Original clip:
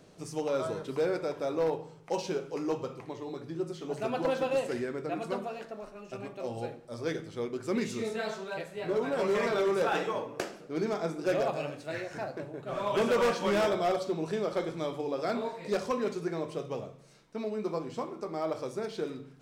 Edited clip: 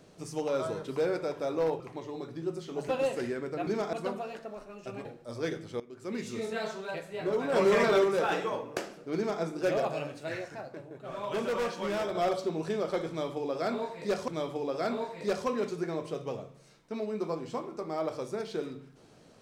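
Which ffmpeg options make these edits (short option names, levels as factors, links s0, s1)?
-filter_complex "[0:a]asplit=12[s0][s1][s2][s3][s4][s5][s6][s7][s8][s9][s10][s11];[s0]atrim=end=1.802[s12];[s1]atrim=start=2.928:end=4.022[s13];[s2]atrim=start=4.408:end=5.192[s14];[s3]atrim=start=10.788:end=11.052[s15];[s4]atrim=start=5.188:end=6.312[s16];[s5]atrim=start=6.678:end=7.43,asetpts=PTS-STARTPTS,afade=t=out:st=0.748:d=0.004:c=hsin:silence=0.133352[s17];[s6]atrim=start=7.43:end=9.152,asetpts=PTS-STARTPTS,afade=t=in:d=0.74:silence=0.133352[s18];[s7]atrim=start=9.148:end=9.672,asetpts=PTS-STARTPTS,volume=1.68[s19];[s8]atrim=start=9.668:end=12.112[s20];[s9]atrim=start=12.108:end=13.782,asetpts=PTS-STARTPTS,volume=0.562[s21];[s10]atrim=start=13.778:end=15.912[s22];[s11]atrim=start=14.718[s23];[s12][s13]acrossfade=d=0.004:c1=hsin:c2=hsin[s24];[s24][s14]acrossfade=d=0.004:c1=hsin:c2=hsin[s25];[s25][s15]acrossfade=d=0.004:c1=hsin:c2=hsin[s26];[s26][s16]acrossfade=d=0.004:c1=hsin:c2=hsin[s27];[s17][s18]concat=n=2:v=0:a=1[s28];[s27][s28]acrossfade=d=0.004:c1=hsin:c2=hsin[s29];[s29][s19]acrossfade=d=0.004:c1=hsin:c2=hsin[s30];[s30][s20]acrossfade=d=0.004:c1=hsin:c2=hsin[s31];[s31][s21]acrossfade=d=0.004:c1=hsin:c2=hsin[s32];[s32][s22]acrossfade=d=0.004:c1=hsin:c2=hsin[s33];[s33][s23]acrossfade=d=0.004:c1=hsin:c2=hsin"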